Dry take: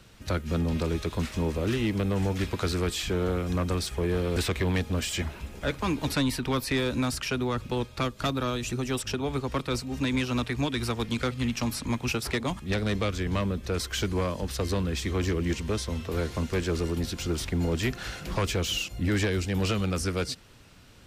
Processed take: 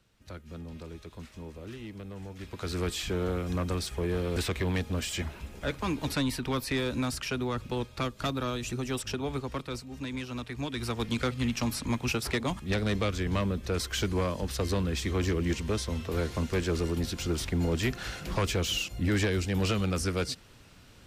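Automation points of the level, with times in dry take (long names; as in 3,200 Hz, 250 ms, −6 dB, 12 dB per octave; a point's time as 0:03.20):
0:02.36 −15 dB
0:02.80 −3 dB
0:09.31 −3 dB
0:09.88 −9 dB
0:10.44 −9 dB
0:11.07 −1 dB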